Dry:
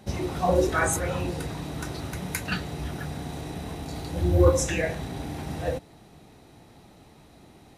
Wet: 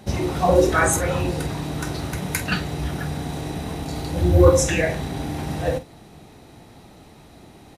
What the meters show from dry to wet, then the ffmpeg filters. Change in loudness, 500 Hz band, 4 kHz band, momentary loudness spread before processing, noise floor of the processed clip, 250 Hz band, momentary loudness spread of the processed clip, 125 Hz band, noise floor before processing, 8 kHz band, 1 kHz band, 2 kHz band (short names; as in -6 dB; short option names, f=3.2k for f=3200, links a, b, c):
+5.5 dB, +6.0 dB, +6.0 dB, 15 LU, -47 dBFS, +5.5 dB, 14 LU, +5.5 dB, -53 dBFS, +5.5 dB, +5.5 dB, +5.5 dB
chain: -filter_complex "[0:a]asplit=2[a][b];[b]adelay=47,volume=-12dB[c];[a][c]amix=inputs=2:normalize=0,volume=5.5dB"